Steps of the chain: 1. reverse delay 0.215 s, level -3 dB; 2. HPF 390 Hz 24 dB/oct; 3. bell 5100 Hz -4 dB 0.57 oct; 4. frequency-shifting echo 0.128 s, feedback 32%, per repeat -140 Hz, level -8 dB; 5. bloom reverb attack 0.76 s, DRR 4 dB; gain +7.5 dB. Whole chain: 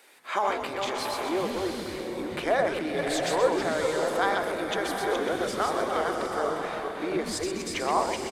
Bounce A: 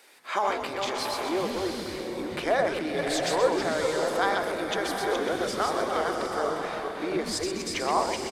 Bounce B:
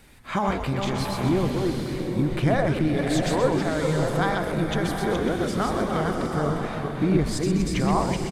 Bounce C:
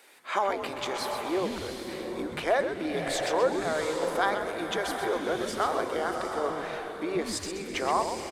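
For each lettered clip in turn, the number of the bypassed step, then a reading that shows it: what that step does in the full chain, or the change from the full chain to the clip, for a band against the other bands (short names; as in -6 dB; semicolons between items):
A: 3, 4 kHz band +2.0 dB; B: 2, 125 Hz band +19.0 dB; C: 1, momentary loudness spread change +1 LU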